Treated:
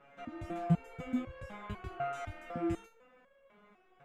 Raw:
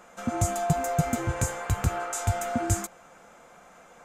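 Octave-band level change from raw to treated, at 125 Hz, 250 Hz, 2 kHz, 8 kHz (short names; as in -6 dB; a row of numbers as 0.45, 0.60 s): -11.0, -4.5, -12.5, -31.5 dB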